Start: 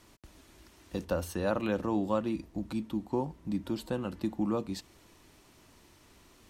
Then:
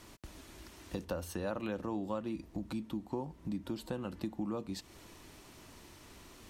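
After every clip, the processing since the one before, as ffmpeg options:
-af "acompressor=threshold=-44dB:ratio=2.5,volume=4.5dB"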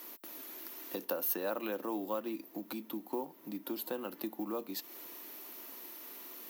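-filter_complex "[0:a]highpass=f=270:w=0.5412,highpass=f=270:w=1.3066,asplit=2[a][b];[b]acrusher=bits=4:mode=log:mix=0:aa=0.000001,volume=-12dB[c];[a][c]amix=inputs=2:normalize=0,aexciter=amount=14.5:drive=5.3:freq=12k"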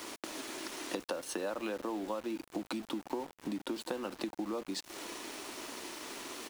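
-af "aresample=22050,aresample=44100,acompressor=threshold=-46dB:ratio=6,aeval=exprs='val(0)*gte(abs(val(0)),0.0015)':c=same,volume=11.5dB"

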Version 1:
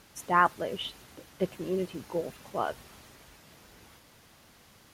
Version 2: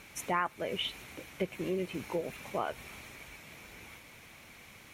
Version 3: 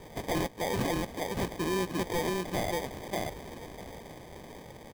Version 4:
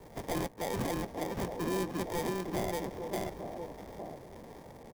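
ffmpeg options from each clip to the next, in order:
-af "equalizer=f=2.3k:w=4.3:g=13.5,bandreject=f=4.8k:w=9.2,acompressor=threshold=-33dB:ratio=3,volume=2dB"
-af "aecho=1:1:582:0.631,acrusher=samples=32:mix=1:aa=0.000001,aeval=exprs='0.0376*(abs(mod(val(0)/0.0376+3,4)-2)-1)':c=same,volume=5dB"
-filter_complex "[0:a]acrossover=split=140|1100|2000[a][b][c][d];[b]aecho=1:1:861:0.562[e];[d]acrusher=bits=6:dc=4:mix=0:aa=0.000001[f];[a][e][c][f]amix=inputs=4:normalize=0,volume=-3.5dB"

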